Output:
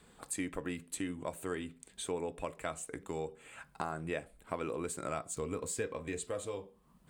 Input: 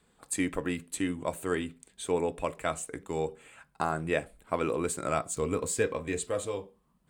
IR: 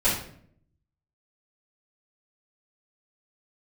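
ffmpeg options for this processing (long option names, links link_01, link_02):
-af "acompressor=threshold=-52dB:ratio=2,volume=6dB"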